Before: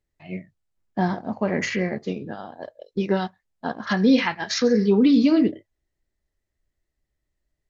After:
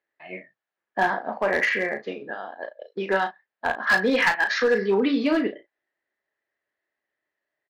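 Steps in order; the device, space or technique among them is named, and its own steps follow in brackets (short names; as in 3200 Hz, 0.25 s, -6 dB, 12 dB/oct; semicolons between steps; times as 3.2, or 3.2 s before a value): megaphone (BPF 540–2500 Hz; bell 1700 Hz +8 dB 0.27 oct; hard clip -19.5 dBFS, distortion -16 dB; doubler 36 ms -9 dB); 1.72–3.14 dynamic EQ 990 Hz, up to -4 dB, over -44 dBFS, Q 1; gain +5 dB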